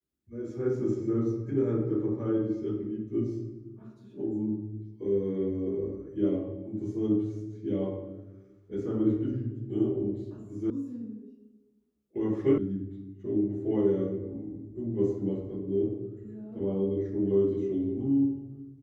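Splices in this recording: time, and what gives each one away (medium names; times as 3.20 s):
10.70 s: sound stops dead
12.58 s: sound stops dead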